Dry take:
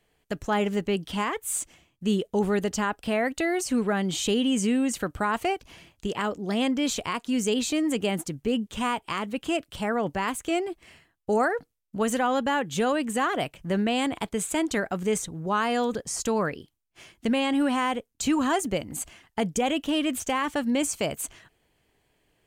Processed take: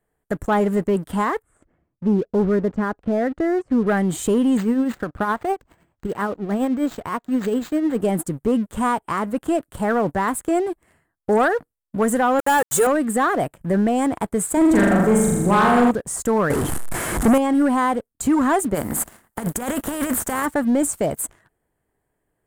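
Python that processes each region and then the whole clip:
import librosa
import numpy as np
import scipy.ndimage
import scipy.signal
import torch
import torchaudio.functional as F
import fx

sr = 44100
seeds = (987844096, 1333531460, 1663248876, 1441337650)

y = fx.chain(x, sr, fx.lowpass(hz=1400.0, slope=12),
    fx.peak_eq(hz=900.0, db=-7.0, octaves=0.84), at=(1.42, 3.87))
y = fx.chain(y, sr, fx.tremolo_shape(shape='triangle', hz=9.8, depth_pct=60),
    fx.resample_linear(factor=4), at=(4.57, 8.0))
y = fx.chain(y, sr, fx.bass_treble(bass_db=-3, treble_db=14),
    fx.comb(ms=2.3, depth=0.79),
    fx.sample_gate(floor_db=-29.0), at=(12.39, 12.87))
y = fx.chain(y, sr, fx.low_shelf(hz=250.0, db=9.0),
    fx.room_flutter(wall_m=7.0, rt60_s=1.2), at=(14.57, 15.91))
y = fx.chain(y, sr, fx.delta_mod(bps=64000, step_db=-34.0),
    fx.leveller(passes=3), at=(16.5, 17.38))
y = fx.spec_flatten(y, sr, power=0.55, at=(18.74, 20.45), fade=0.02)
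y = fx.peak_eq(y, sr, hz=220.0, db=7.5, octaves=0.2, at=(18.74, 20.45), fade=0.02)
y = fx.over_compress(y, sr, threshold_db=-28.0, ratio=-0.5, at=(18.74, 20.45), fade=0.02)
y = fx.band_shelf(y, sr, hz=3800.0, db=-15.5, octaves=1.7)
y = fx.leveller(y, sr, passes=2)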